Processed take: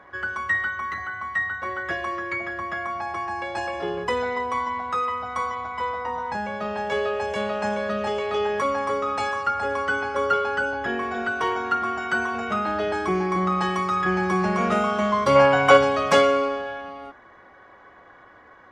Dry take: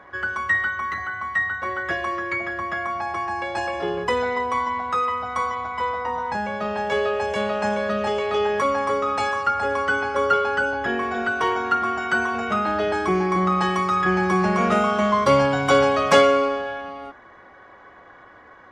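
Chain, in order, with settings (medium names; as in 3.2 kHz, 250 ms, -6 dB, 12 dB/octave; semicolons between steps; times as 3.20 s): time-frequency box 15.36–15.77 s, 410–3100 Hz +7 dB; trim -2.5 dB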